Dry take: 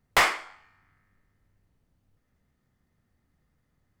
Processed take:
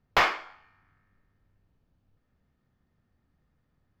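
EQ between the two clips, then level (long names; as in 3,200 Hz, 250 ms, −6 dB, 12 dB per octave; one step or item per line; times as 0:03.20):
moving average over 5 samples
notch filter 2,000 Hz, Q 11
0.0 dB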